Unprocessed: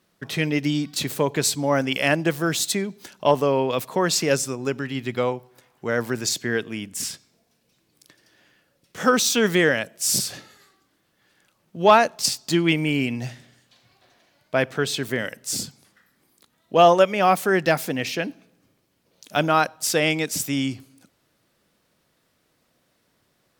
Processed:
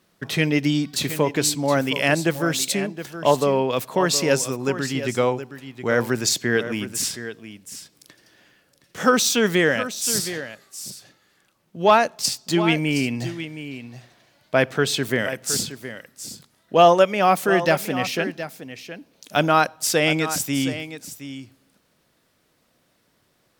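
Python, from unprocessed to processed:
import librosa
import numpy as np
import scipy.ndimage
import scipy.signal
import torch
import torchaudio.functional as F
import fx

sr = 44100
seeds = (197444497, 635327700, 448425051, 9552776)

p1 = fx.rider(x, sr, range_db=4, speed_s=2.0)
y = p1 + fx.echo_single(p1, sr, ms=718, db=-12.0, dry=0)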